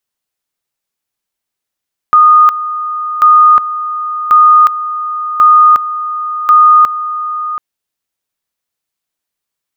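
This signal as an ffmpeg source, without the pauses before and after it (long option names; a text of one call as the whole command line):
ffmpeg -f lavfi -i "aevalsrc='pow(10,(-2-13*gte(mod(t,1.09),0.36))/20)*sin(2*PI*1230*t)':duration=5.45:sample_rate=44100" out.wav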